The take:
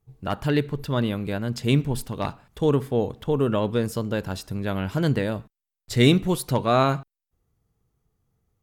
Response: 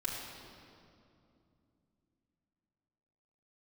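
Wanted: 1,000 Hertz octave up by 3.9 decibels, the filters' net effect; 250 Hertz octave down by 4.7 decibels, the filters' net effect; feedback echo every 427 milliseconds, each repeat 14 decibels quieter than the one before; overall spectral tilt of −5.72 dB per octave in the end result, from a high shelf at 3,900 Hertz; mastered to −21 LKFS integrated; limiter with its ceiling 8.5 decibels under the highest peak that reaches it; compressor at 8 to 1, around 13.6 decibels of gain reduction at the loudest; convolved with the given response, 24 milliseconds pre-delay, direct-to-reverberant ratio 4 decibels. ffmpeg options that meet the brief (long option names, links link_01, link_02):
-filter_complex "[0:a]equalizer=frequency=250:width_type=o:gain=-7,equalizer=frequency=1000:width_type=o:gain=6,highshelf=frequency=3900:gain=-5.5,acompressor=threshold=-28dB:ratio=8,alimiter=level_in=2dB:limit=-24dB:level=0:latency=1,volume=-2dB,aecho=1:1:427|854:0.2|0.0399,asplit=2[link_01][link_02];[1:a]atrim=start_sample=2205,adelay=24[link_03];[link_02][link_03]afir=irnorm=-1:irlink=0,volume=-7dB[link_04];[link_01][link_04]amix=inputs=2:normalize=0,volume=14dB"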